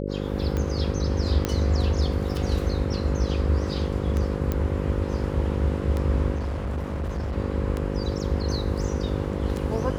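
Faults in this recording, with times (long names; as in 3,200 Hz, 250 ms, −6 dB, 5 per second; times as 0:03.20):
mains buzz 50 Hz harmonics 11 −29 dBFS
scratch tick 33 1/3 rpm −16 dBFS
0:01.45: click −10 dBFS
0:04.52: click −13 dBFS
0:06.35–0:07.36: clipping −25 dBFS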